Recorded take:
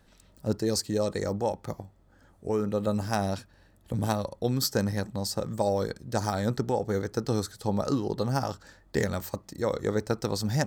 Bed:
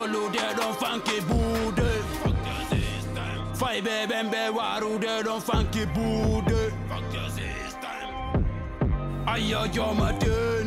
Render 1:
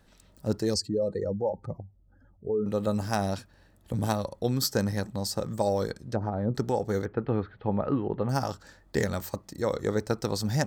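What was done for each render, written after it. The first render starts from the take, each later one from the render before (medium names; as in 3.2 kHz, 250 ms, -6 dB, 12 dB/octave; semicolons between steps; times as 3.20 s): 0.74–2.66 s: spectral contrast enhancement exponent 1.9; 5.94–6.55 s: low-pass that closes with the level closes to 500 Hz, closed at -23 dBFS; 7.05–8.29 s: steep low-pass 2.8 kHz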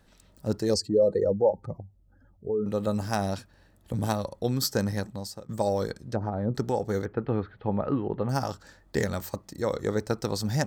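0.69–1.51 s: dynamic bell 520 Hz, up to +7 dB, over -40 dBFS, Q 0.84; 4.98–5.49 s: fade out, to -21.5 dB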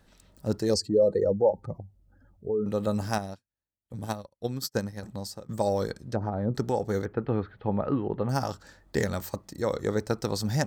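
3.18–5.03 s: upward expansion 2.5:1, over -48 dBFS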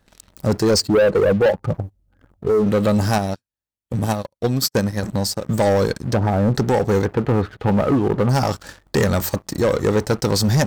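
in parallel at -2 dB: compression 6:1, threshold -33 dBFS, peak gain reduction 15 dB; on the sum: waveshaping leveller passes 3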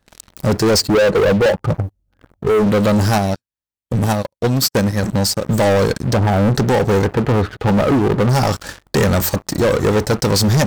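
waveshaping leveller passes 2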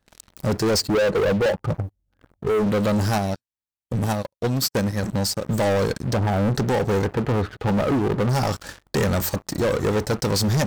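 trim -6.5 dB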